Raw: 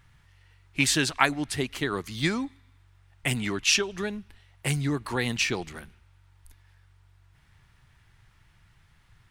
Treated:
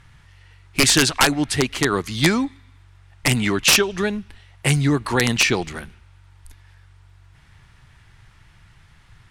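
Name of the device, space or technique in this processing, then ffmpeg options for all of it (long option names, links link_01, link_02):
overflowing digital effects unit: -af "aeval=exprs='(mod(5.01*val(0)+1,2)-1)/5.01':channel_layout=same,lowpass=11000,volume=9dB"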